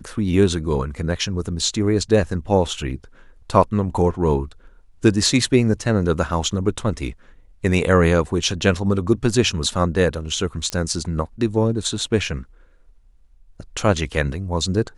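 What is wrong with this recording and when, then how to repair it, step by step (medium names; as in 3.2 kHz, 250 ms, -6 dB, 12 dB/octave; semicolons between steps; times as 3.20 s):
10.70 s: pop -11 dBFS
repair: de-click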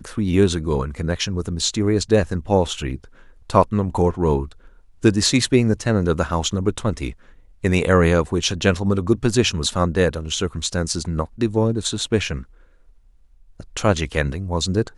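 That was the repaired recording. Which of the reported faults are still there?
nothing left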